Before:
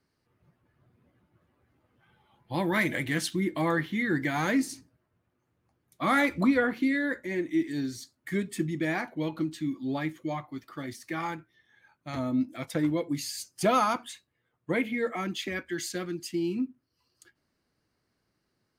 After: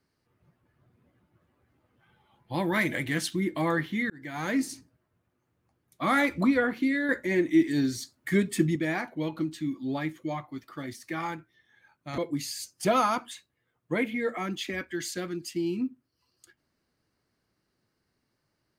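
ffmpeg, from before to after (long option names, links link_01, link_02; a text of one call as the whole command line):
ffmpeg -i in.wav -filter_complex "[0:a]asplit=5[link_01][link_02][link_03][link_04][link_05];[link_01]atrim=end=4.1,asetpts=PTS-STARTPTS,afade=type=out:start_time=4.096:duration=0.004:curve=hsin[link_06];[link_02]atrim=start=4.1:end=7.092,asetpts=PTS-STARTPTS,afade=type=in:duration=0.54[link_07];[link_03]atrim=start=7.088:end=8.762,asetpts=PTS-STARTPTS,volume=5.5dB[link_08];[link_04]atrim=start=8.758:end=12.182[link_09];[link_05]atrim=start=12.958[link_10];[link_06][link_07]concat=n=2:v=0:a=1[link_11];[link_11][link_08]acrossfade=duration=0.004:curve1=hsin:curve2=hsin[link_12];[link_12][link_09]acrossfade=duration=0.004:curve1=hsin:curve2=hsin[link_13];[link_13][link_10]acrossfade=duration=0.004:curve1=hsin:curve2=hsin" out.wav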